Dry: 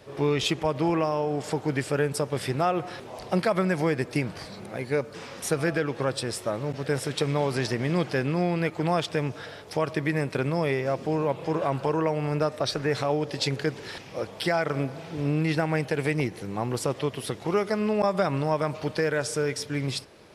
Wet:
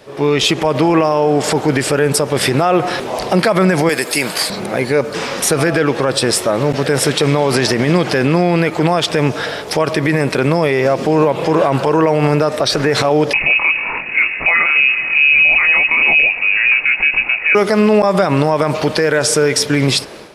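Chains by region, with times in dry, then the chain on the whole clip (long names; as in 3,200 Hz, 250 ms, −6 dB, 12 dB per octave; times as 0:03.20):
0:03.89–0:04.50: high-pass filter 54 Hz + RIAA equalisation recording + notch filter 5,800 Hz, Q 8.1
0:13.33–0:17.55: parametric band 130 Hz +7.5 dB 2.9 octaves + chorus effect 2.1 Hz, delay 20 ms + voice inversion scrambler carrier 2,700 Hz
whole clip: parametric band 86 Hz −9.5 dB 1.3 octaves; automatic gain control gain up to 11.5 dB; brickwall limiter −13 dBFS; level +9 dB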